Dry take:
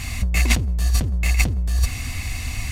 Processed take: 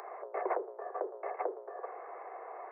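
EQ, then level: Gaussian blur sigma 9.1 samples; steep high-pass 380 Hz 96 dB/oct; +7.0 dB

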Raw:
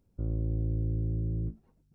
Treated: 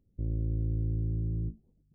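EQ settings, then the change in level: Gaussian blur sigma 16 samples; 0.0 dB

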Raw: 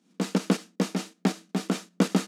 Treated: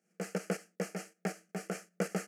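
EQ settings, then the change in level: fixed phaser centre 1000 Hz, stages 6; -4.5 dB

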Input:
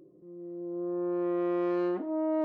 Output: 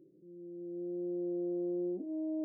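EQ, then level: Gaussian blur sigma 20 samples; HPF 200 Hz 6 dB/oct; 0.0 dB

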